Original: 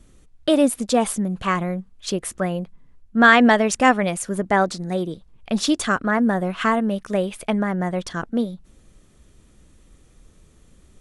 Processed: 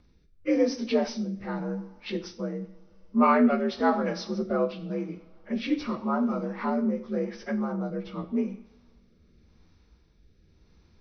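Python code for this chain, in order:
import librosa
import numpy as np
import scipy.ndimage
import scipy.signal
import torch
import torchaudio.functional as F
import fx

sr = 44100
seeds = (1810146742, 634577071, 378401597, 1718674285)

y = fx.partial_stretch(x, sr, pct=84)
y = fx.lowpass(y, sr, hz=3500.0, slope=6)
y = fx.rev_double_slope(y, sr, seeds[0], early_s=0.56, late_s=3.7, knee_db=-27, drr_db=7.0)
y = fx.rotary(y, sr, hz=0.9)
y = y * 10.0 ** (-4.0 / 20.0)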